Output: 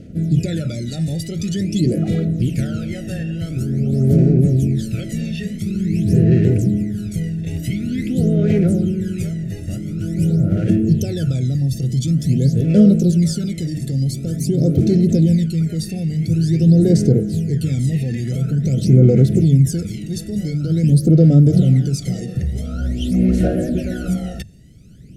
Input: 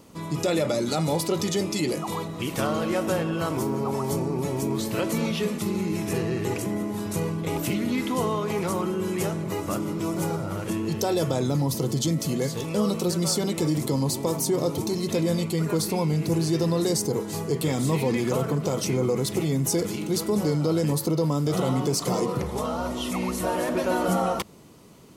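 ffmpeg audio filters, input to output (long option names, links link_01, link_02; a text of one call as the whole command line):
ffmpeg -i in.wav -af "lowpass=11000,bass=frequency=250:gain=15,treble=frequency=4000:gain=0,aphaser=in_gain=1:out_gain=1:delay=1.1:decay=0.73:speed=0.47:type=sinusoidal,asuperstop=centerf=1000:order=8:qfactor=1.4,bandreject=frequency=50:width_type=h:width=6,bandreject=frequency=100:width_type=h:width=6,bandreject=frequency=150:width_type=h:width=6,volume=-5.5dB" out.wav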